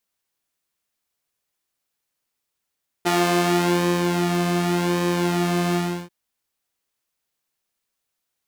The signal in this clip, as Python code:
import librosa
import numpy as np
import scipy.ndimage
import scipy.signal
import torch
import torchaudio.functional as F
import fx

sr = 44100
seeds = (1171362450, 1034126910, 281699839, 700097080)

y = fx.sub_patch_pwm(sr, seeds[0], note=53, wave2='saw', interval_st=12, detune_cents=29, level2_db=-9.0, sub_db=-15.0, noise_db=-30.0, kind='highpass', cutoff_hz=150.0, q=0.95, env_oct=1.5, env_decay_s=0.85, env_sustain_pct=35, attack_ms=19.0, decay_s=0.96, sustain_db=-6, release_s=0.34, note_s=2.7, lfo_hz=0.88, width_pct=31, width_swing_pct=6)